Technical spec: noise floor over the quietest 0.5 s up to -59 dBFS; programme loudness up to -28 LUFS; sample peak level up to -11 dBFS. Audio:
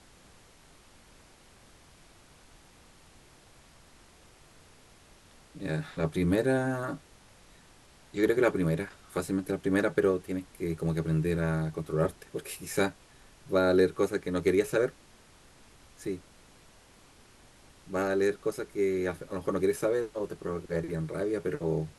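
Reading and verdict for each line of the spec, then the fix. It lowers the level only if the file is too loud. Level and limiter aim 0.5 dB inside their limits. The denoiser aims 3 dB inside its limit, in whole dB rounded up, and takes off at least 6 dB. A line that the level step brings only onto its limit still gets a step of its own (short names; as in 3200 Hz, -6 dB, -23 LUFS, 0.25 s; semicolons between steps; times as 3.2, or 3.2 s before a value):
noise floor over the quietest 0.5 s -57 dBFS: fail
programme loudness -30.0 LUFS: OK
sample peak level -13.0 dBFS: OK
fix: denoiser 6 dB, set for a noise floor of -57 dBFS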